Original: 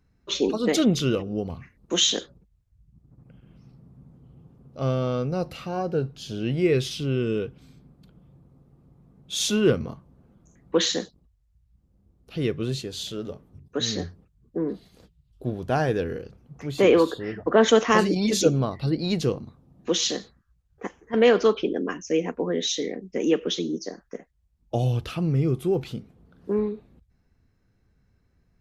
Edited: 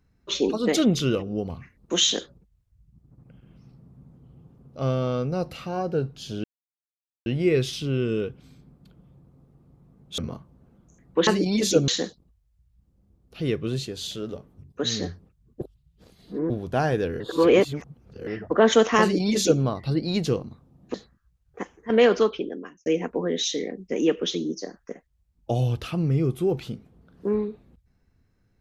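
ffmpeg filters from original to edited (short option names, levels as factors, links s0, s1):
-filter_complex "[0:a]asplit=11[s0][s1][s2][s3][s4][s5][s6][s7][s8][s9][s10];[s0]atrim=end=6.44,asetpts=PTS-STARTPTS,afade=t=out:st=6.436:d=0.004:c=hsin,apad=pad_dur=0.82[s11];[s1]atrim=start=6.44:end=9.362,asetpts=PTS-STARTPTS,afade=t=in:d=0.004:c=hsin[s12];[s2]atrim=start=9.748:end=10.842[s13];[s3]atrim=start=17.968:end=18.582[s14];[s4]atrim=start=10.838:end=14.572[s15];[s5]atrim=start=14.568:end=15.462,asetpts=PTS-STARTPTS,areverse[s16];[s6]atrim=start=15.458:end=16.162[s17];[s7]atrim=start=16.158:end=17.232,asetpts=PTS-STARTPTS,areverse[s18];[s8]atrim=start=17.228:end=19.902[s19];[s9]atrim=start=20.178:end=22.1,asetpts=PTS-STARTPTS,afade=t=out:st=1.202:d=0.72[s20];[s10]atrim=start=22.1,asetpts=PTS-STARTPTS,afade=t=in:d=0.004:c=hsin[s21];[s11][s12]concat=n=2:v=0:a=1[s22];[s22][s13]acrossfade=d=0.004:c1=hsin:c2=hsin[s23];[s23][s14]acrossfade=d=0.004:c1=hsin:c2=hsin[s24];[s24][s15]acrossfade=d=0.004:c1=hsin:c2=hsin[s25];[s25][s16]acrossfade=d=0.004:c1=hsin:c2=hsin[s26];[s26][s17]acrossfade=d=0.004:c1=hsin:c2=hsin[s27];[s27][s18]acrossfade=d=0.004:c1=hsin:c2=hsin[s28];[s28][s19]acrossfade=d=0.004:c1=hsin:c2=hsin[s29];[s20][s21]concat=n=2:v=0:a=1[s30];[s29][s30]acrossfade=d=0.004:c1=hsin:c2=hsin"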